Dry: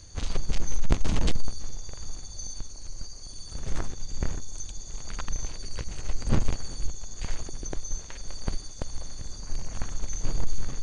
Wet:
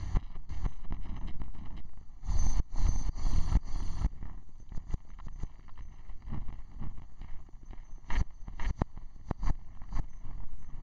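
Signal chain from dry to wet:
low-pass filter 2,200 Hz 12 dB per octave
mains-hum notches 60/120 Hz
comb filter 1 ms, depth 83%
gate with flip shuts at −23 dBFS, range −27 dB
on a send: single-tap delay 493 ms −3.5 dB
on the sum: level +8.5 dB

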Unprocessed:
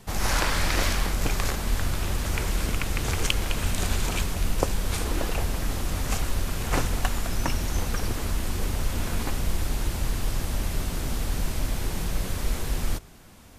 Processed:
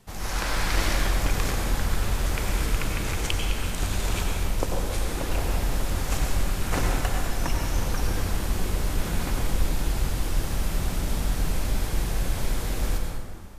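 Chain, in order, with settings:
automatic gain control gain up to 5.5 dB
convolution reverb RT60 1.8 s, pre-delay 82 ms, DRR 0 dB
level −7.5 dB

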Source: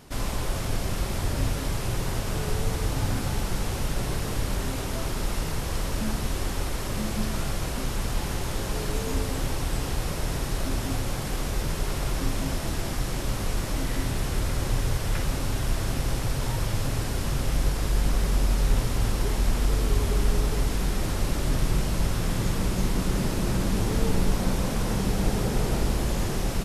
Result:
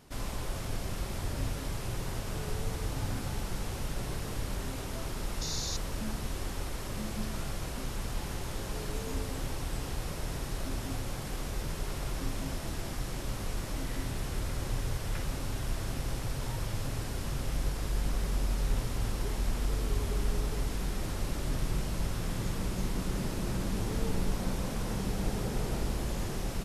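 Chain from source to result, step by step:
sound drawn into the spectrogram noise, 0:05.41–0:05.77, 3,500–7,100 Hz −30 dBFS
level −7.5 dB

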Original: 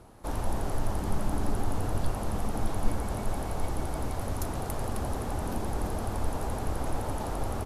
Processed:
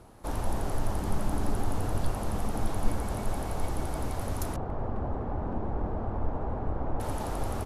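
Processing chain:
0:04.56–0:07.00: low-pass filter 1,200 Hz 12 dB per octave

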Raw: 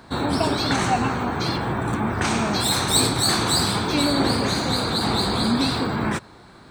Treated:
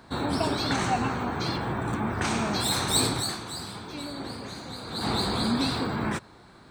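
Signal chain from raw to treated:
0:00.73–0:02.11: parametric band 11,000 Hz −5.5 dB 0.32 octaves
0:03.15–0:05.08: duck −11 dB, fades 0.30 s quadratic
level −5 dB

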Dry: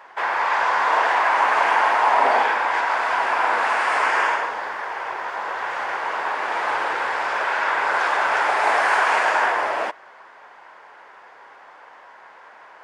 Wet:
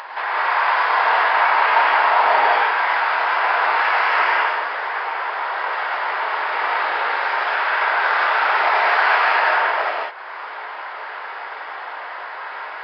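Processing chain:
Bessel high-pass filter 610 Hz, order 2
upward compression, threshold −22 dBFS
reverb whose tail is shaped and stops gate 220 ms rising, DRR −4.5 dB
downsampling to 11,025 Hz
level −2 dB

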